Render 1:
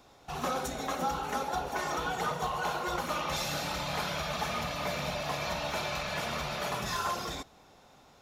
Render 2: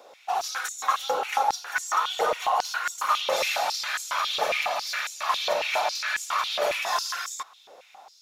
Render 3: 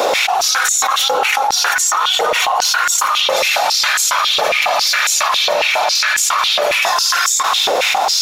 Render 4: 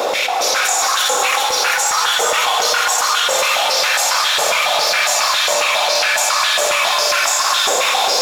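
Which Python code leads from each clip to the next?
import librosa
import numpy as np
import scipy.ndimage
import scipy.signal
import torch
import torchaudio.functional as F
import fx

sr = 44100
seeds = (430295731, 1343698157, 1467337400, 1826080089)

y1 = fx.filter_held_highpass(x, sr, hz=7.3, low_hz=520.0, high_hz=7200.0)
y1 = F.gain(torch.from_numpy(y1), 4.0).numpy()
y2 = fx.env_flatten(y1, sr, amount_pct=100)
y2 = F.gain(torch.from_numpy(y2), 4.0).numpy()
y3 = y2 + 10.0 ** (-3.5 / 20.0) * np.pad(y2, (int(405 * sr / 1000.0), 0))[:len(y2)]
y3 = fx.rev_shimmer(y3, sr, seeds[0], rt60_s=3.2, semitones=7, shimmer_db=-8, drr_db=6.0)
y3 = F.gain(torch.from_numpy(y3), -3.5).numpy()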